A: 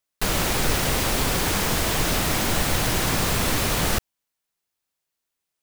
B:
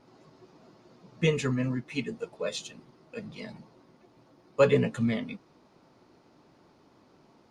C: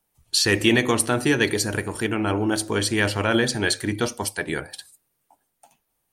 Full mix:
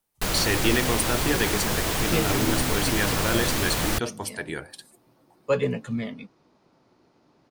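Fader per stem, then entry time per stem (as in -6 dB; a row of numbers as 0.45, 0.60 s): -3.0, -2.0, -5.5 dB; 0.00, 0.90, 0.00 s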